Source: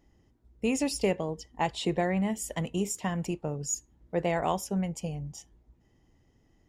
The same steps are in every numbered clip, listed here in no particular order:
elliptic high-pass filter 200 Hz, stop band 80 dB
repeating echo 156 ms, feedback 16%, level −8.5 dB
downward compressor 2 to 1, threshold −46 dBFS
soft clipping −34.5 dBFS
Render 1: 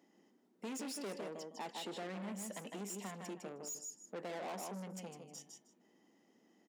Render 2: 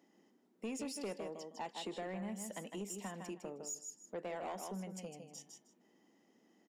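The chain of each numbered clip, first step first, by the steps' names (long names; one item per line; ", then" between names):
repeating echo, then soft clipping, then downward compressor, then elliptic high-pass filter
repeating echo, then downward compressor, then elliptic high-pass filter, then soft clipping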